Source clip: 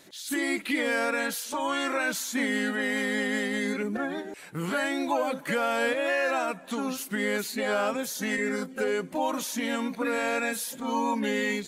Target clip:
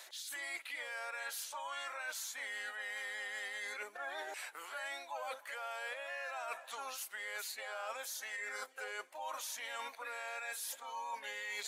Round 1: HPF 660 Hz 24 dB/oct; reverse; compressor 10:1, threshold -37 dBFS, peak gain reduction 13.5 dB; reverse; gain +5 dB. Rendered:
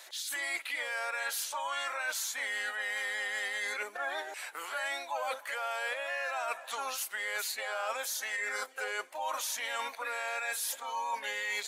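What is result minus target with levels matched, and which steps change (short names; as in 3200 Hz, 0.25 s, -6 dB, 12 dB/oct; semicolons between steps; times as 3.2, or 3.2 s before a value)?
compressor: peak gain reduction -7.5 dB
change: compressor 10:1, threshold -45.5 dBFS, peak gain reduction 21 dB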